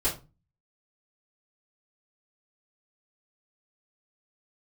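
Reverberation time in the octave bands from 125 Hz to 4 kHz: 0.55, 0.40, 0.30, 0.30, 0.20, 0.20 s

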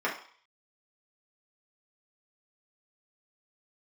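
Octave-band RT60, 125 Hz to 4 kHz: 0.25, 0.35, 0.45, 0.55, 0.55, 0.60 s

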